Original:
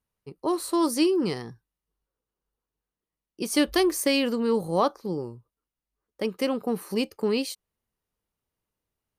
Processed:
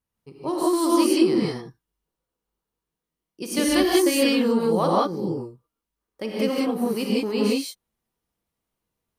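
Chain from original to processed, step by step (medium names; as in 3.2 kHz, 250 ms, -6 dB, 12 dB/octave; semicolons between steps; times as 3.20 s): gated-style reverb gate 210 ms rising, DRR -4.5 dB; trim -2.5 dB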